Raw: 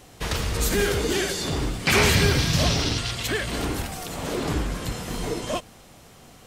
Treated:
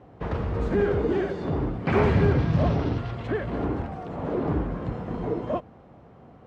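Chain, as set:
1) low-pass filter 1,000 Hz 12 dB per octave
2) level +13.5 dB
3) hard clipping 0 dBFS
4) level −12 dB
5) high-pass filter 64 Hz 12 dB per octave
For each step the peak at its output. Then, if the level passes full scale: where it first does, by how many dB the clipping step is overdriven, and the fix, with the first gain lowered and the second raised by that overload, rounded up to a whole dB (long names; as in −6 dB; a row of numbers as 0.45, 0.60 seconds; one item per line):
−9.0, +4.5, 0.0, −12.0, −10.0 dBFS
step 2, 4.5 dB
step 2 +8.5 dB, step 4 −7 dB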